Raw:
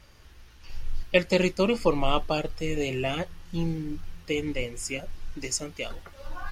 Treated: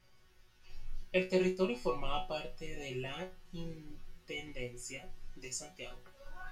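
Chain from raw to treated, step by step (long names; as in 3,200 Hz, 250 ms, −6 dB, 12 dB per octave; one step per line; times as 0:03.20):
resonators tuned to a chord B2 fifth, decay 0.23 s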